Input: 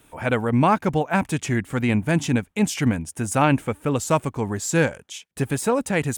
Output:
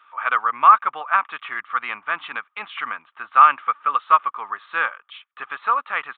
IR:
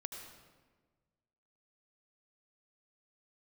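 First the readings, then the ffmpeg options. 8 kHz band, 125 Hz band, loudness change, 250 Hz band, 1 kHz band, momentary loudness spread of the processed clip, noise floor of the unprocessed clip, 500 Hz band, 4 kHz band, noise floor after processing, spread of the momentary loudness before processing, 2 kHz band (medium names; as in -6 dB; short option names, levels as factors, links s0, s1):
under -40 dB, under -35 dB, +2.5 dB, under -25 dB, +9.0 dB, 17 LU, -62 dBFS, -14.5 dB, -3.0 dB, -70 dBFS, 7 LU, +3.5 dB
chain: -af "highpass=f=1200:t=q:w=14,aresample=8000,aresample=44100,alimiter=level_in=0.841:limit=0.891:release=50:level=0:latency=1,volume=0.891"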